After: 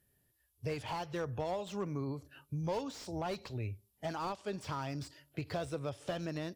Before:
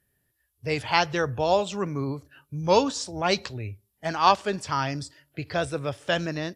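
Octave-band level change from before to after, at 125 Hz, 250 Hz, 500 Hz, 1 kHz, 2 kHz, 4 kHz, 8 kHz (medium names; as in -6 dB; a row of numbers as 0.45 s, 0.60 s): -7.5 dB, -9.5 dB, -12.5 dB, -16.0 dB, -17.0 dB, -17.0 dB, -15.0 dB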